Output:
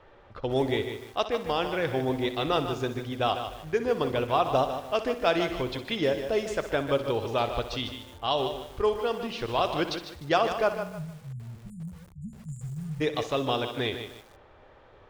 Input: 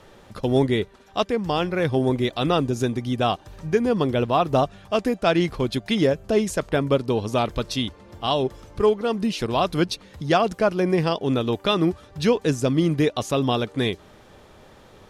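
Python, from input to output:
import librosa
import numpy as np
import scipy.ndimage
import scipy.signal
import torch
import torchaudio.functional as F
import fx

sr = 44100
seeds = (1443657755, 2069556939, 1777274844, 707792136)

y = fx.peak_eq(x, sr, hz=190.0, db=-12.0, octaves=1.1)
y = fx.env_lowpass(y, sr, base_hz=2300.0, full_db=-14.0)
y = fx.spec_erase(y, sr, start_s=10.72, length_s=2.29, low_hz=230.0, high_hz=6800.0)
y = fx.echo_feedback(y, sr, ms=62, feedback_pct=56, wet_db=-12.5)
y = fx.rev_fdn(y, sr, rt60_s=0.49, lf_ratio=1.0, hf_ratio=0.4, size_ms=36.0, drr_db=19.0)
y = fx.echo_crushed(y, sr, ms=151, feedback_pct=35, bits=7, wet_db=-8.5)
y = y * 10.0 ** (-3.5 / 20.0)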